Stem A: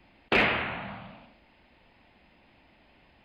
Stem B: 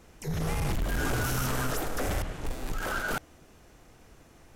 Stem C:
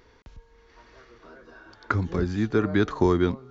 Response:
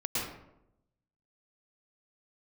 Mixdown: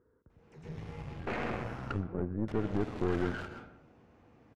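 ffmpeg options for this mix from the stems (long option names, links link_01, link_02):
-filter_complex "[0:a]lowpass=1600,adelay=950,volume=-9.5dB,asplit=2[link_01][link_02];[link_02]volume=-5dB[link_03];[1:a]acrossover=split=110|2000[link_04][link_05][link_06];[link_04]acompressor=threshold=-35dB:ratio=4[link_07];[link_05]acompressor=threshold=-43dB:ratio=4[link_08];[link_06]acompressor=threshold=-43dB:ratio=4[link_09];[link_07][link_08][link_09]amix=inputs=3:normalize=0,adelay=300,volume=0.5dB,asplit=3[link_10][link_11][link_12];[link_10]atrim=end=1.86,asetpts=PTS-STARTPTS,afade=type=out:start_time=1.856:duration=0.004:curve=hsin[link_13];[link_11]atrim=start=1.86:end=2.48,asetpts=PTS-STARTPTS,volume=0[link_14];[link_12]atrim=start=2.48,asetpts=PTS-STARTPTS,afade=type=in:duration=0.004:curve=hsin[link_15];[link_13][link_14][link_15]concat=n=3:v=0:a=1,asplit=2[link_16][link_17];[link_17]volume=-7.5dB[link_18];[2:a]firequalizer=gain_entry='entry(510,0);entry(770,-13);entry(1400,-3);entry(2400,-28)':delay=0.05:min_phase=1,volume=-5.5dB,asplit=3[link_19][link_20][link_21];[link_20]volume=-22dB[link_22];[link_21]apad=whole_len=213889[link_23];[link_16][link_23]sidechaingate=range=-33dB:threshold=-44dB:ratio=16:detection=peak[link_24];[3:a]atrim=start_sample=2205[link_25];[link_03][link_18][link_22]amix=inputs=3:normalize=0[link_26];[link_26][link_25]afir=irnorm=-1:irlink=0[link_27];[link_01][link_24][link_19][link_27]amix=inputs=4:normalize=0,highpass=79,adynamicsmooth=sensitivity=1.5:basefreq=2900,aeval=exprs='(tanh(17.8*val(0)+0.8)-tanh(0.8))/17.8':channel_layout=same"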